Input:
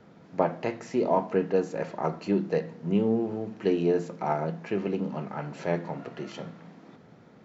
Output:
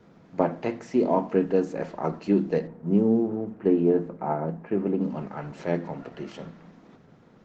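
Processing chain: 2.67–5.01 s: low-pass 1.5 kHz 12 dB/octave; dynamic bell 270 Hz, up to +7 dB, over -39 dBFS, Q 1.7; Opus 16 kbps 48 kHz

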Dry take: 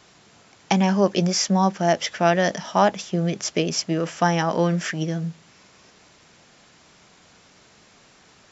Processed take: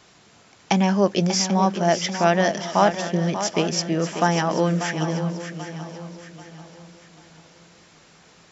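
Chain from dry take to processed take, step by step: shuffle delay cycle 786 ms, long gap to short 3:1, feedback 36%, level -10 dB

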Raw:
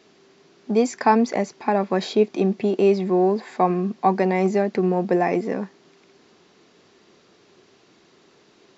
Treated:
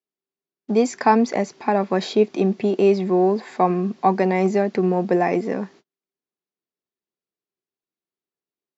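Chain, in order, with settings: gate -45 dBFS, range -42 dB; trim +1 dB

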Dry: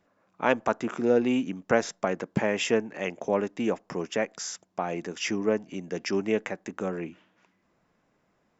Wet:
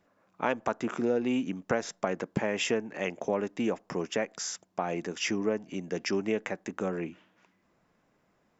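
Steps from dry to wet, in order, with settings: compression 3:1, threshold -25 dBFS, peak gain reduction 7.5 dB

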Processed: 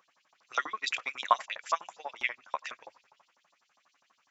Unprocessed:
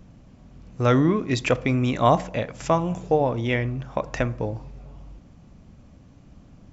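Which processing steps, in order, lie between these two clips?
LFO high-pass saw up 7.8 Hz 910–5400 Hz; harmonic-percussive split harmonic -8 dB; granular stretch 0.64×, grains 60 ms; trim -3.5 dB

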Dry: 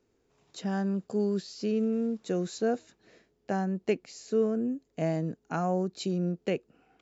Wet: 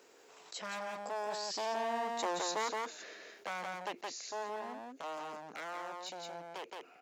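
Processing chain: one-sided wavefolder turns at -30 dBFS; Doppler pass-by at 2.15 s, 13 m/s, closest 5.5 m; high-pass 620 Hz 12 dB/octave; on a send: delay 170 ms -5 dB; on the sum: level flattener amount 50%; trim +2.5 dB

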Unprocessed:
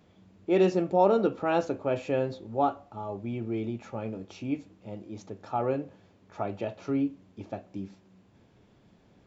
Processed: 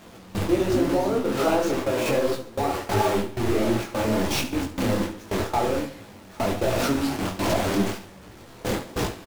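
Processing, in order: jump at every zero crossing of -25 dBFS; in parallel at -10 dB: decimation with a swept rate 8×, swing 160% 0.49 Hz; on the sum: compression 8:1, threshold -25 dBFS, peak gain reduction 12 dB; simulated room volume 4000 m³, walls furnished, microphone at 0.75 m; ever faster or slower copies 96 ms, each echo -5 st, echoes 2, each echo -6 dB; gate with hold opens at -19 dBFS; peaking EQ 160 Hz -11 dB 0.4 oct; on a send: feedback delay 69 ms, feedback 43%, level -12 dB; on the sum: detune thickener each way 46 cents; trim +7.5 dB

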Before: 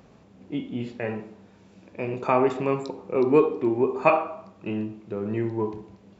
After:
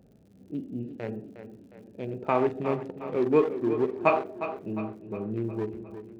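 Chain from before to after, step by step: local Wiener filter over 41 samples; tape echo 358 ms, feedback 54%, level -10 dB, low-pass 5.8 kHz; crackle 83 per s -50 dBFS; trim -3 dB

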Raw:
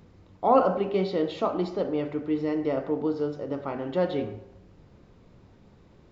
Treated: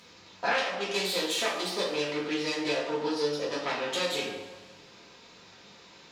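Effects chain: tracing distortion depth 0.44 ms; high-pass 770 Hz 6 dB/octave; peaking EQ 4.7 kHz +12.5 dB 2.4 oct; compression 6:1, threshold -33 dBFS, peak gain reduction 19 dB; two-slope reverb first 0.45 s, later 1.8 s, from -16 dB, DRR -7.5 dB

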